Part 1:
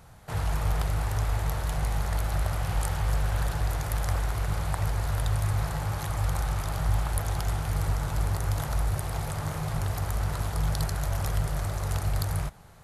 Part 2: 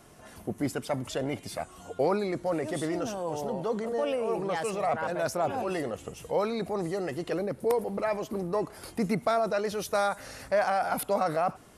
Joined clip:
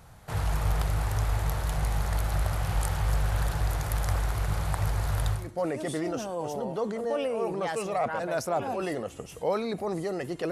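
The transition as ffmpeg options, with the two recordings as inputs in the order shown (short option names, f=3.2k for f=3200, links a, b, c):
-filter_complex "[0:a]apad=whole_dur=10.51,atrim=end=10.51,atrim=end=5.59,asetpts=PTS-STARTPTS[a];[1:a]atrim=start=2.17:end=7.39,asetpts=PTS-STARTPTS[b];[a][b]acrossfade=d=0.3:c1=qua:c2=qua"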